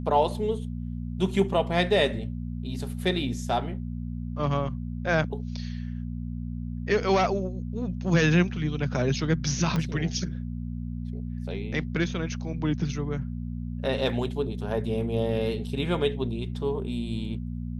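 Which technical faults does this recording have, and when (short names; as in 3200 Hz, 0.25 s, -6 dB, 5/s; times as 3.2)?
hum 60 Hz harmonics 4 -33 dBFS
9.76 pop -15 dBFS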